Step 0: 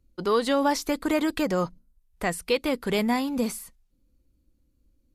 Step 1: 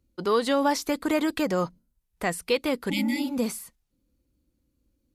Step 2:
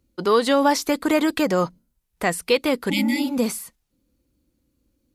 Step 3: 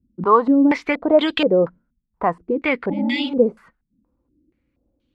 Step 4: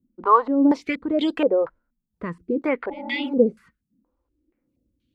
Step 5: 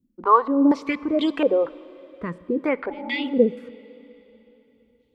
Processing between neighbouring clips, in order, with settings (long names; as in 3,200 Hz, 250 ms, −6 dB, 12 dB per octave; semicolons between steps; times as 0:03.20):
high-pass filter 83 Hz 6 dB per octave; healed spectral selection 0:02.93–0:03.28, 240–1,900 Hz after
low-shelf EQ 100 Hz −5.5 dB; level +5.5 dB
low-pass on a step sequencer 4.2 Hz 220–3,200 Hz; level −1 dB
phaser with staggered stages 0.76 Hz
dense smooth reverb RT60 3.5 s, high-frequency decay 1×, DRR 18 dB